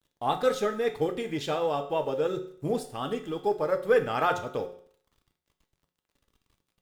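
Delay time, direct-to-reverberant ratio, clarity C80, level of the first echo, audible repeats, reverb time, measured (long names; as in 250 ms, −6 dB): no echo audible, 5.0 dB, 14.5 dB, no echo audible, no echo audible, 0.55 s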